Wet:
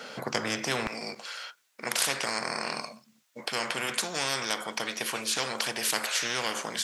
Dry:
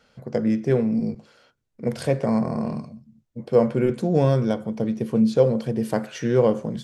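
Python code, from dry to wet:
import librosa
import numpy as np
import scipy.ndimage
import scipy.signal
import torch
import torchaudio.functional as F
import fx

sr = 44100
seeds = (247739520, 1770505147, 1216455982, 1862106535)

y = fx.highpass(x, sr, hz=fx.steps((0.0, 290.0), (0.87, 1300.0)), slope=12)
y = fx.spectral_comp(y, sr, ratio=4.0)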